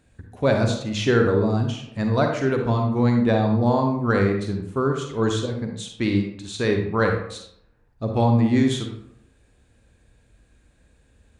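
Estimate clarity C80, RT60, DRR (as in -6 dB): 8.0 dB, 0.75 s, 3.0 dB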